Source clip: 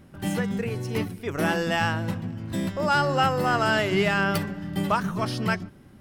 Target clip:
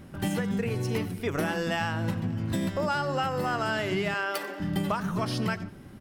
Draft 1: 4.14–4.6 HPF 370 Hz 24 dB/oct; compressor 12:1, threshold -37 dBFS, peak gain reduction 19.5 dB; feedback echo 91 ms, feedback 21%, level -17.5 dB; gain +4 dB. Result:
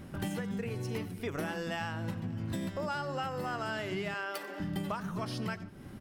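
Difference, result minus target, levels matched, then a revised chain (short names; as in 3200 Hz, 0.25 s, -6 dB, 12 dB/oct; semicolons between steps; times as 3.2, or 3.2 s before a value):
compressor: peak gain reduction +7.5 dB
4.14–4.6 HPF 370 Hz 24 dB/oct; compressor 12:1, threshold -29 dBFS, peak gain reduction 12 dB; feedback echo 91 ms, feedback 21%, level -17.5 dB; gain +4 dB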